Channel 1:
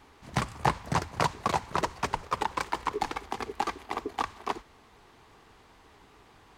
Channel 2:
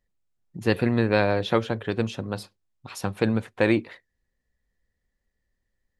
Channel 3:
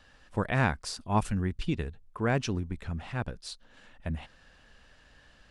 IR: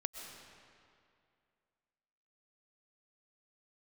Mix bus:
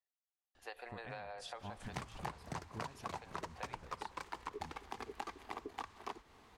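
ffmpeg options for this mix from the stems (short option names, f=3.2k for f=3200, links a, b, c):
-filter_complex "[0:a]adelay=1600,volume=-5dB[a];[1:a]highpass=f=570:w=0.5412,highpass=f=570:w=1.3066,equalizer=f=760:t=o:w=0.25:g=9.5,acompressor=threshold=-26dB:ratio=6,volume=-17.5dB,asplit=3[b][c][d];[c]volume=-10.5dB[e];[2:a]acompressor=threshold=-28dB:ratio=6,adelay=550,volume=-11.5dB,asplit=2[f][g];[g]volume=-18.5dB[h];[d]apad=whole_len=267028[i];[f][i]sidechaincompress=threshold=-58dB:ratio=8:attack=16:release=101[j];[3:a]atrim=start_sample=2205[k];[e][h]amix=inputs=2:normalize=0[l];[l][k]afir=irnorm=-1:irlink=0[m];[a][b][j][m]amix=inputs=4:normalize=0,acompressor=threshold=-42dB:ratio=4"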